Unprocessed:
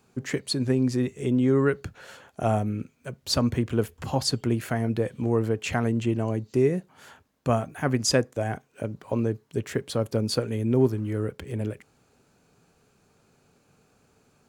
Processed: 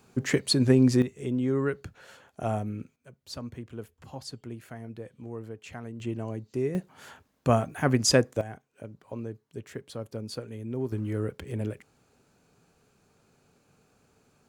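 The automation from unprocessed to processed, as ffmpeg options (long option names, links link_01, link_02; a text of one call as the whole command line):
ffmpeg -i in.wav -af "asetnsamples=nb_out_samples=441:pad=0,asendcmd='1.02 volume volume -5.5dB;2.96 volume volume -15dB;6 volume volume -7.5dB;6.75 volume volume 1dB;8.41 volume volume -11dB;10.92 volume volume -2dB',volume=3.5dB" out.wav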